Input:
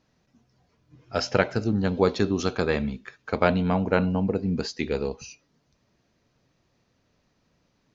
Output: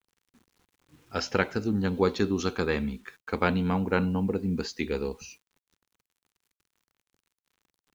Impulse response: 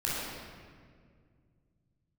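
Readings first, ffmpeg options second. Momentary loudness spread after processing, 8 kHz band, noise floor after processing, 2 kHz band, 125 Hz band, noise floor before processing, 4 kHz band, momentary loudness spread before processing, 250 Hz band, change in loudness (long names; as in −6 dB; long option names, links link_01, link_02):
10 LU, can't be measured, below −85 dBFS, −1.5 dB, −3.0 dB, −71 dBFS, −3.0 dB, 10 LU, −2.0 dB, −3.0 dB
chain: -af "acrusher=bits=9:mix=0:aa=0.000001,equalizer=frequency=125:width_type=o:width=0.33:gain=-10,equalizer=frequency=630:width_type=o:width=0.33:gain=-11,equalizer=frequency=5000:width_type=o:width=0.33:gain=-3,volume=-1.5dB"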